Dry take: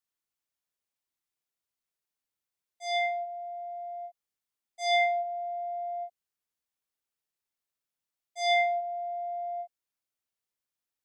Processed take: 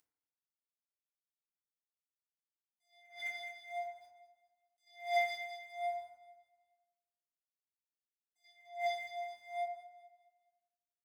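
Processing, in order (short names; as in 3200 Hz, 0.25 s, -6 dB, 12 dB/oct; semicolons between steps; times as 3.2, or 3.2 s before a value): gate -27 dBFS, range -32 dB; Chebyshev high-pass 820 Hz, order 5; limiter -37 dBFS, peak gain reduction 15 dB; upward compressor, threshold -33 dBFS; phaser 0.48 Hz, delay 3.6 ms, feedback 51%; crossover distortion -54.5 dBFS; on a send: feedback echo 0.21 s, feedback 39%, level -14 dB; on the sum: FDN reverb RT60 0.89 s, low-frequency decay 0.95×, high-frequency decay 0.35×, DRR -5 dB; attack slew limiter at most 150 dB/s; gain +11 dB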